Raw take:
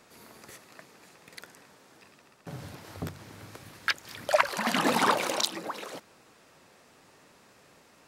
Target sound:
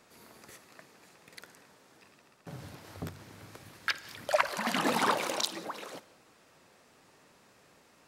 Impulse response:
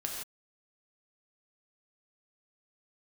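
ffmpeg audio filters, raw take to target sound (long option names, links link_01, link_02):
-filter_complex "[0:a]asplit=2[link_01][link_02];[1:a]atrim=start_sample=2205,afade=type=out:start_time=0.19:duration=0.01,atrim=end_sample=8820,adelay=54[link_03];[link_02][link_03]afir=irnorm=-1:irlink=0,volume=-17.5dB[link_04];[link_01][link_04]amix=inputs=2:normalize=0,volume=-3.5dB"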